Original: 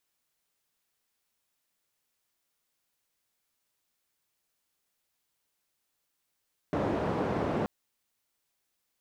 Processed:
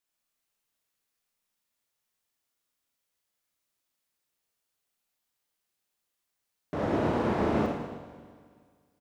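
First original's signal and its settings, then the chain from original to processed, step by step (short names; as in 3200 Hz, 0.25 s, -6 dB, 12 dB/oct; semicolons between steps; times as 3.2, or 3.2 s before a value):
noise band 92–560 Hz, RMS -30 dBFS 0.93 s
feedback echo 0.323 s, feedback 39%, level -18 dB; Schroeder reverb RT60 1.8 s, combs from 26 ms, DRR -1.5 dB; upward expander 1.5:1, over -37 dBFS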